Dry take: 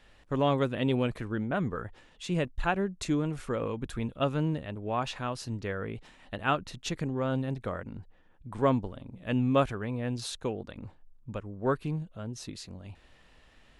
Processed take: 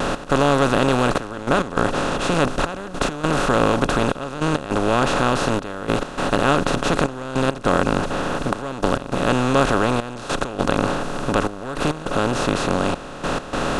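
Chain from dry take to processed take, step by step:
compressor on every frequency bin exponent 0.2
pitch vibrato 0.37 Hz 9.9 cents
gate pattern "x.xxxxxx.." 102 BPM −12 dB
level +2.5 dB

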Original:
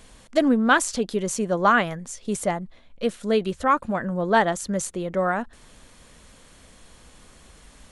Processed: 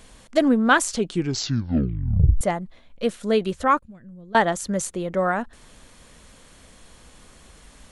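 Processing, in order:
0:00.92: tape stop 1.49 s
0:03.79–0:04.35: guitar amp tone stack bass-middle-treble 10-0-1
level +1 dB

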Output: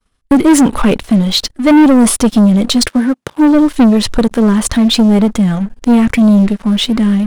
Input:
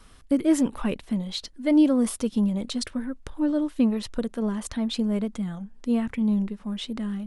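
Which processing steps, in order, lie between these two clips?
downward expander −40 dBFS
0:02.88–0:03.54: high-pass filter 210 Hz → 74 Hz 24 dB per octave
0:06.10–0:06.53: high-shelf EQ 3,900 Hz +8.5 dB
leveller curve on the samples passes 3
level +8.5 dB

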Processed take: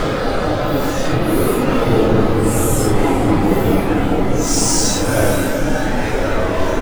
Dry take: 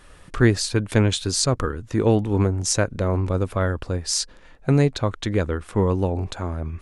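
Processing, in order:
high-pass filter 61 Hz 12 dB per octave
low-shelf EQ 160 Hz −9.5 dB
power curve on the samples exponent 0.5
delay with pitch and tempo change per echo 245 ms, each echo +5 semitones, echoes 3, each echo −6 dB
on a send: repeating echo 96 ms, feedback 56%, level −16 dB
on the sum: spring reverb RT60 3.3 s, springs 46 ms, chirp 75 ms, DRR 0 dB
extreme stretch with random phases 4.7×, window 0.05 s, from 0:01.70
level −4.5 dB

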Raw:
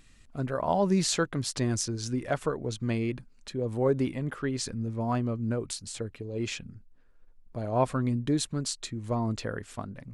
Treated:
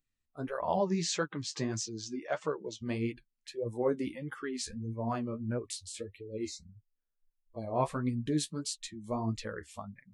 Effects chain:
0:00.77–0:02.82: elliptic band-pass filter 120–6,900 Hz, stop band 40 dB
0:06.47–0:06.71: healed spectral selection 980–3,700 Hz both
noise reduction from a noise print of the clip's start 25 dB
flanger 1.6 Hz, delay 6.6 ms, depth 8.1 ms, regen +35%

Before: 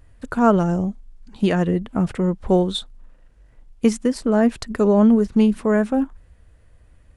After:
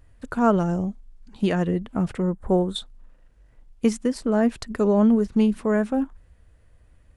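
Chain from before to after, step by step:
0:02.22–0:02.76: flat-topped bell 3,700 Hz −12 dB
level −3.5 dB

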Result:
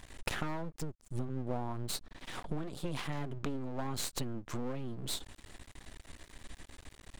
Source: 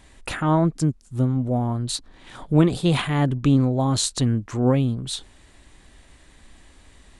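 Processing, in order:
downward compressor 8 to 1, threshold −32 dBFS, peak gain reduction 21 dB
0:01.28–0:01.92: high-pass filter 140 Hz → 44 Hz 12 dB per octave
half-wave rectification
level +2.5 dB

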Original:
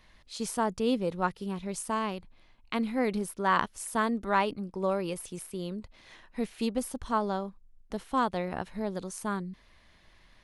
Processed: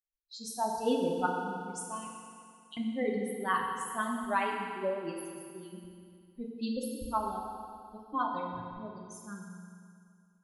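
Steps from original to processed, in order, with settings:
spectral dynamics exaggerated over time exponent 3
0:02.07–0:02.77: Chebyshev high-pass filter 2,800 Hz, order 10
feedback delay network reverb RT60 2.3 s, low-frequency decay 1×, high-frequency decay 0.95×, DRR −0.5 dB

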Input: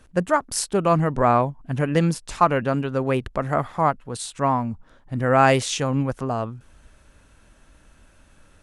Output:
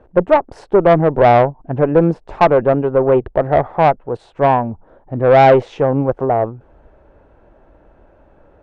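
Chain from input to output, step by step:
low-pass filter 1,400 Hz 12 dB per octave
flat-topped bell 540 Hz +10 dB
tube saturation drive 7 dB, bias 0.3
level +4 dB

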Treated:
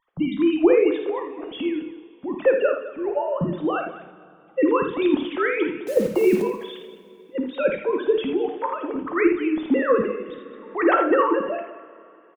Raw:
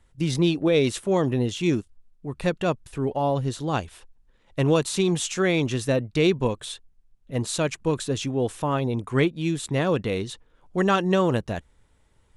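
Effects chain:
three sine waves on the formant tracks
spectral tilt −4 dB per octave
harmonic and percussive parts rebalanced harmonic −12 dB
low-shelf EQ 430 Hz −8 dB
0:00.95–0:01.76: downward compressor, threshold −32 dBFS, peak gain reduction 9 dB
square-wave tremolo 0.67 Hz, depth 60%, duty 80%
0:05.84–0:06.42: bit-depth reduction 8 bits, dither none
on a send: multi-tap delay 54/82/208 ms −9/−9/−14.5 dB
on the sum: coupled-rooms reverb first 0.41 s, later 2.9 s, from −16 dB, DRR 7 dB
boost into a limiter +14 dB
0:10.01–0:10.82: multiband upward and downward compressor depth 40%
level −6 dB

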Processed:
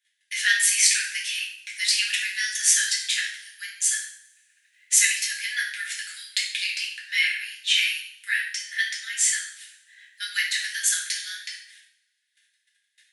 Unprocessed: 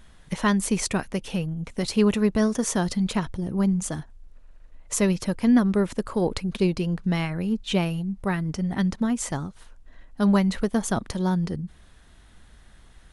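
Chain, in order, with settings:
noise gate −45 dBFS, range −27 dB
Butterworth high-pass 1,600 Hz 96 dB per octave
coupled-rooms reverb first 0.56 s, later 1.5 s, from −23 dB, DRR −4.5 dB
level +6.5 dB

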